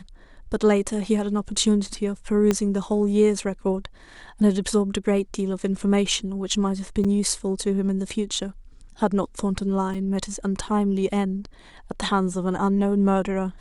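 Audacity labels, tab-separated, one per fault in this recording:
2.510000	2.510000	pop -8 dBFS
7.040000	7.050000	gap 5.9 ms
9.940000	9.950000	gap 5.6 ms

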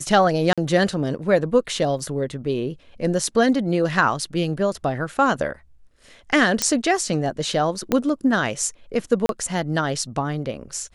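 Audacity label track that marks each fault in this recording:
0.530000	0.580000	gap 46 ms
1.990000	1.990000	gap 2.7 ms
6.620000	6.620000	pop -3 dBFS
7.920000	7.920000	pop -6 dBFS
9.260000	9.290000	gap 32 ms

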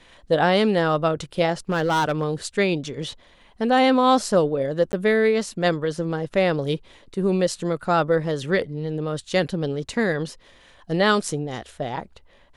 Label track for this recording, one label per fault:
1.690000	2.250000	clipped -17 dBFS
4.920000	4.930000	gap 10 ms

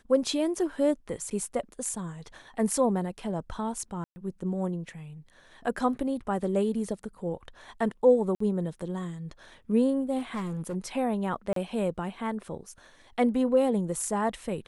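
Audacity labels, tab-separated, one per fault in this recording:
1.300000	1.310000	gap 8.7 ms
4.040000	4.160000	gap 0.12 s
8.350000	8.400000	gap 54 ms
10.180000	10.760000	clipped -28.5 dBFS
11.530000	11.560000	gap 33 ms

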